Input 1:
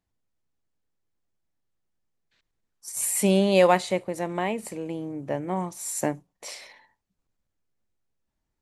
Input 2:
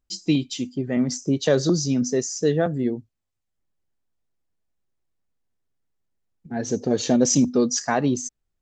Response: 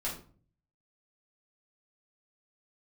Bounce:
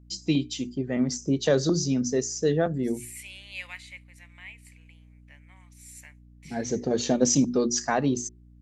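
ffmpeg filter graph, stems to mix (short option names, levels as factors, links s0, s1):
-filter_complex "[0:a]highpass=f=2200:t=q:w=3.5,volume=0.158[s0];[1:a]bandreject=f=60:t=h:w=6,bandreject=f=120:t=h:w=6,bandreject=f=180:t=h:w=6,bandreject=f=240:t=h:w=6,bandreject=f=300:t=h:w=6,bandreject=f=360:t=h:w=6,bandreject=f=420:t=h:w=6,volume=0.75[s1];[s0][s1]amix=inputs=2:normalize=0,aeval=exprs='val(0)+0.00282*(sin(2*PI*60*n/s)+sin(2*PI*2*60*n/s)/2+sin(2*PI*3*60*n/s)/3+sin(2*PI*4*60*n/s)/4+sin(2*PI*5*60*n/s)/5)':c=same"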